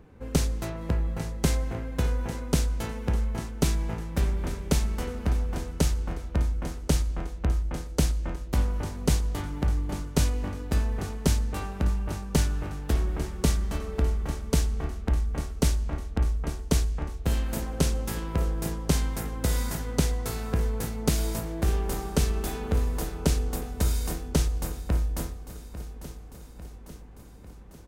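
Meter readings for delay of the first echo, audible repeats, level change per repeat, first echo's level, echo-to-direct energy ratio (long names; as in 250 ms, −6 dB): 848 ms, 5, −4.5 dB, −13.5 dB, −11.5 dB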